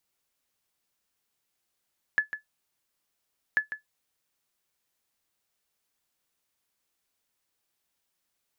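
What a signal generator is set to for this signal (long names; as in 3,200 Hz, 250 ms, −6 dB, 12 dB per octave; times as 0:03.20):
ping with an echo 1,720 Hz, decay 0.13 s, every 1.39 s, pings 2, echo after 0.15 s, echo −11 dB −14.5 dBFS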